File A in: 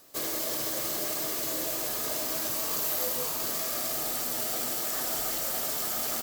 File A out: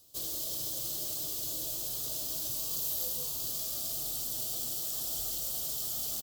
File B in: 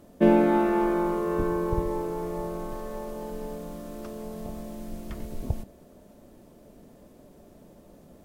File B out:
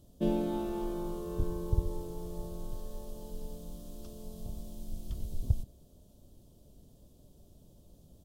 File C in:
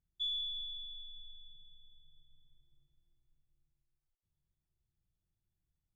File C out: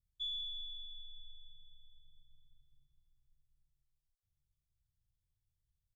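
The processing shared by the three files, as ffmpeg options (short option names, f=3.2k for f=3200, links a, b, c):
-af "firequalizer=gain_entry='entry(110,0);entry(200,-12);entry(2000,-26);entry(3200,-5)':delay=0.05:min_phase=1,volume=1.5dB"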